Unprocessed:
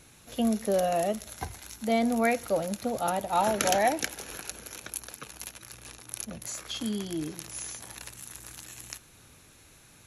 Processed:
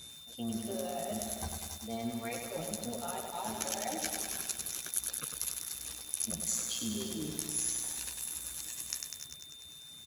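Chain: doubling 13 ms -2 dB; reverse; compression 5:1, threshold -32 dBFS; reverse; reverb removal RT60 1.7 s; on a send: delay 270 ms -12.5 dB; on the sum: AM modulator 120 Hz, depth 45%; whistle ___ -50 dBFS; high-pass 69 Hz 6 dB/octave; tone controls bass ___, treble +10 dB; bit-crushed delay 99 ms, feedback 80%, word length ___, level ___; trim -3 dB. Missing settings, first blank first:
3.6 kHz, +5 dB, 8-bit, -4 dB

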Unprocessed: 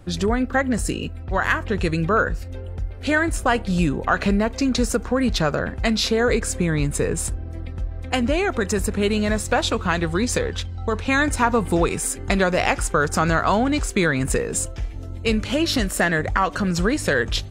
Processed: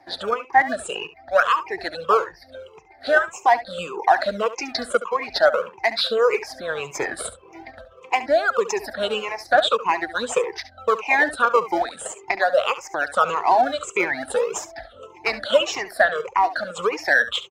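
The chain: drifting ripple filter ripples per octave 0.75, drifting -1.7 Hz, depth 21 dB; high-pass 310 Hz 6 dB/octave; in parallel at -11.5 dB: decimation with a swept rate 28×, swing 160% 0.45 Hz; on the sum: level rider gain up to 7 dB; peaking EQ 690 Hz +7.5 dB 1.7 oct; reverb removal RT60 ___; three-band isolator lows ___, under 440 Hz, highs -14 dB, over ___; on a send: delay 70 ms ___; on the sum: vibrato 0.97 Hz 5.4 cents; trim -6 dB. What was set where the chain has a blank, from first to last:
0.64 s, -16 dB, 6.2 kHz, -14.5 dB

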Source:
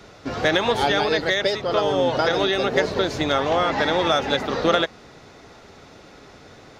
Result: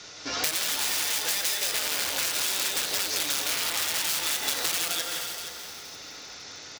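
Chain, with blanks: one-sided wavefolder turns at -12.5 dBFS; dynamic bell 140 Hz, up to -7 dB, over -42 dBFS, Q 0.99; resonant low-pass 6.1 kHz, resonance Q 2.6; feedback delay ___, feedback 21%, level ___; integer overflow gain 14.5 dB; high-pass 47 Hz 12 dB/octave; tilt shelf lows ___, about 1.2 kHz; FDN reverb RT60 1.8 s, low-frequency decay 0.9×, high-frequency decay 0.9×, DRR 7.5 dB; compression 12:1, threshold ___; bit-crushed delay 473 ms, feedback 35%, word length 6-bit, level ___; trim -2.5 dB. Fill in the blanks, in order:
167 ms, -3 dB, -8 dB, -21 dBFS, -8 dB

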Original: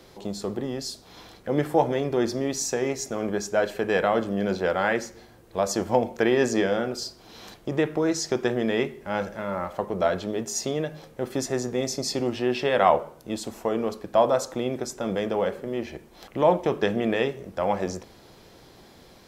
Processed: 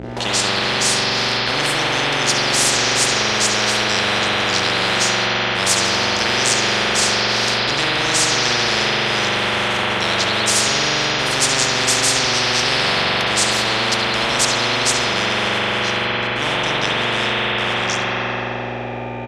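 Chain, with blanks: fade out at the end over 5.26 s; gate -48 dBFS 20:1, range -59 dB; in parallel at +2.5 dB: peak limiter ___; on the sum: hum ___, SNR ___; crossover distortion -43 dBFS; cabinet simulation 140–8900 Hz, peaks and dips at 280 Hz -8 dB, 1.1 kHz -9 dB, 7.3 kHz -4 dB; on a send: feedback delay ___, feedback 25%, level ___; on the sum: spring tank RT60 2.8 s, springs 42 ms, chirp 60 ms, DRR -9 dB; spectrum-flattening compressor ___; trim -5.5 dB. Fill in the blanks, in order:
-13 dBFS, 60 Hz, 10 dB, 70 ms, -14.5 dB, 10:1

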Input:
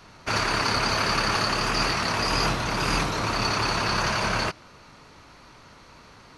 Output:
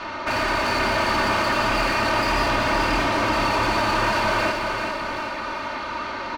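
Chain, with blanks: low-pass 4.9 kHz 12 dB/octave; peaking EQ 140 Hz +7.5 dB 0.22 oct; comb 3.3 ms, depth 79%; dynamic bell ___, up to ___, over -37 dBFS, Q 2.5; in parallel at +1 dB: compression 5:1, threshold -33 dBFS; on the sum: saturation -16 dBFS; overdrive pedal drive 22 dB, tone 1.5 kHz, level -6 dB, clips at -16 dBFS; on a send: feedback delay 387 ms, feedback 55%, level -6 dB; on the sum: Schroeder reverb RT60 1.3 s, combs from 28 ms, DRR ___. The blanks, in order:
1.3 kHz, -3 dB, 7.5 dB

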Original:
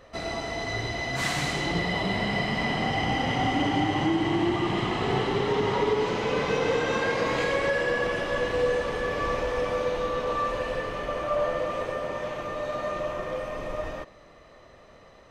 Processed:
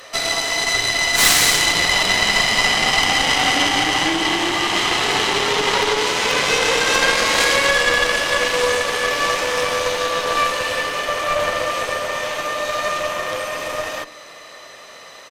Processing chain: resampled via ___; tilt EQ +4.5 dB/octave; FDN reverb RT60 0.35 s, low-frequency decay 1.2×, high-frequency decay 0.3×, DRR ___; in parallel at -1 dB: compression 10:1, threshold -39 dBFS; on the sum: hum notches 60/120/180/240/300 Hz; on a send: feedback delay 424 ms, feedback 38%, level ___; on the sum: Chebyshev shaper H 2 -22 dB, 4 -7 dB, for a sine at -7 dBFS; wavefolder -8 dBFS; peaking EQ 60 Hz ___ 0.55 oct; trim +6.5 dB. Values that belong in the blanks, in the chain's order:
32 kHz, 17 dB, -24 dB, -8.5 dB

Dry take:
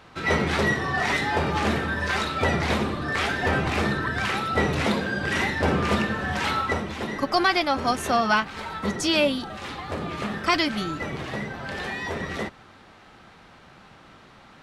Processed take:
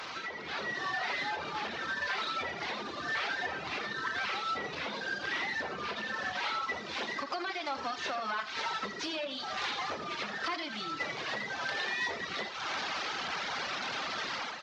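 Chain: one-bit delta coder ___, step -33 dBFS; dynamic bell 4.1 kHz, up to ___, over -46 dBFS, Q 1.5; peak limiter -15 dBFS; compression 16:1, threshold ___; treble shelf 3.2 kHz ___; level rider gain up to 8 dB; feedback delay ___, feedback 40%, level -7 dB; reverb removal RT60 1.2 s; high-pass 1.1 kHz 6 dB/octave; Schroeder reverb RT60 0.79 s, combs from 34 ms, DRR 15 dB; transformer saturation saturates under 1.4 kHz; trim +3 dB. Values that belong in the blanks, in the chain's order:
32 kbps, +6 dB, -35 dBFS, -8.5 dB, 83 ms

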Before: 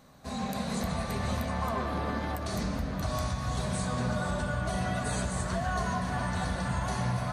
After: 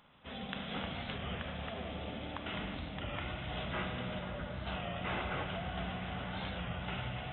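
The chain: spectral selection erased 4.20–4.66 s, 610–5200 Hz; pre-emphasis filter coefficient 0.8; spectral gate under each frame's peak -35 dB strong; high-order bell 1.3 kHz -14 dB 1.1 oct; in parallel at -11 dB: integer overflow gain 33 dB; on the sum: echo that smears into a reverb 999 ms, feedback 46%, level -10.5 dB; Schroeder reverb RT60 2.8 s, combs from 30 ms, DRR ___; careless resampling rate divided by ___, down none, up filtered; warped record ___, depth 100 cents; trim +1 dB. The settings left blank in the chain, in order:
5.5 dB, 6×, 33 1/3 rpm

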